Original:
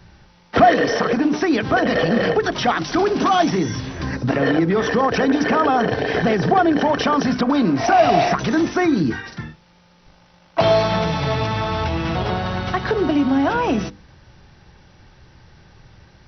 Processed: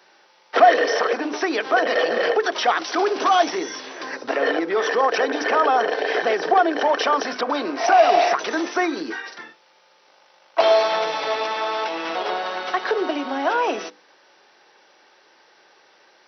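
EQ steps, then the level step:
high-pass filter 390 Hz 24 dB per octave
0.0 dB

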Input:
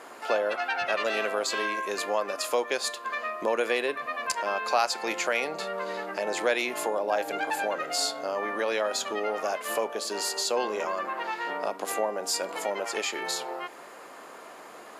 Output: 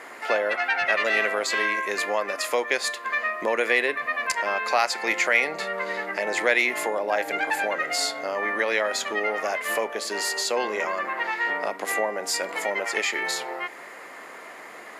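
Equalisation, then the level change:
parametric band 2,000 Hz +12.5 dB 0.42 octaves
+1.5 dB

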